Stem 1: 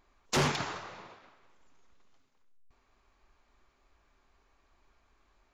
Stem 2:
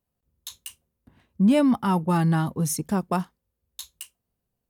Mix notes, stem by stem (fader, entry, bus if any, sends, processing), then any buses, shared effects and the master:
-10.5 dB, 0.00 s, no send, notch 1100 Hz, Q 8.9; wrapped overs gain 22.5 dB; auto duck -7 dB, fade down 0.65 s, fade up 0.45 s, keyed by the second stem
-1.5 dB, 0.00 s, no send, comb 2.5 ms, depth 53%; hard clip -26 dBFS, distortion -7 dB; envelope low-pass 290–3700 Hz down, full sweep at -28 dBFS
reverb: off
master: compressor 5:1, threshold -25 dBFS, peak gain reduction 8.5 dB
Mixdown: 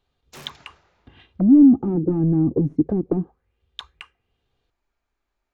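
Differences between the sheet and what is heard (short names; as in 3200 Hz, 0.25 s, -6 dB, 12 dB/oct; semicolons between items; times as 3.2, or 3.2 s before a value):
stem 2 -1.5 dB -> +6.5 dB; master: missing compressor 5:1, threshold -25 dBFS, peak gain reduction 8.5 dB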